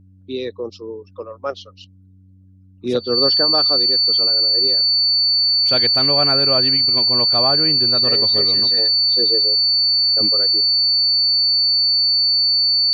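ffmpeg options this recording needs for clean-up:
-af "bandreject=f=94.2:t=h:w=4,bandreject=f=188.4:t=h:w=4,bandreject=f=282.6:t=h:w=4,bandreject=f=4.5k:w=30"

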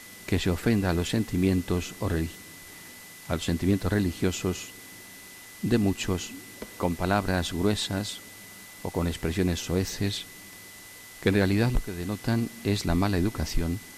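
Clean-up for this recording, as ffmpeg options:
-af "bandreject=f=2k:w=30,afwtdn=0.005"

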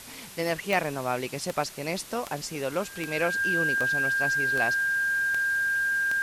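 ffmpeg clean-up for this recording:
-af "adeclick=t=4,bandreject=f=1.6k:w=30,afwtdn=0.0063"

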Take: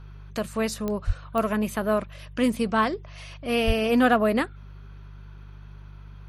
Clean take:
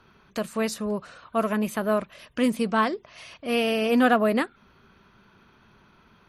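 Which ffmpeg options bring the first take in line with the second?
-filter_complex "[0:a]adeclick=t=4,bandreject=f=49.7:t=h:w=4,bandreject=f=99.4:t=h:w=4,bandreject=f=149.1:t=h:w=4,asplit=3[a][b][c];[a]afade=t=out:st=1.06:d=0.02[d];[b]highpass=f=140:w=0.5412,highpass=f=140:w=1.3066,afade=t=in:st=1.06:d=0.02,afade=t=out:st=1.18:d=0.02[e];[c]afade=t=in:st=1.18:d=0.02[f];[d][e][f]amix=inputs=3:normalize=0,asplit=3[g][h][i];[g]afade=t=out:st=3.66:d=0.02[j];[h]highpass=f=140:w=0.5412,highpass=f=140:w=1.3066,afade=t=in:st=3.66:d=0.02,afade=t=out:st=3.78:d=0.02[k];[i]afade=t=in:st=3.78:d=0.02[l];[j][k][l]amix=inputs=3:normalize=0"

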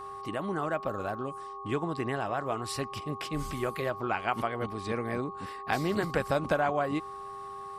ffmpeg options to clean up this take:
-af "bandreject=f=398:t=h:w=4,bandreject=f=796:t=h:w=4,bandreject=f=1.194k:t=h:w=4,bandreject=f=1.1k:w=30"

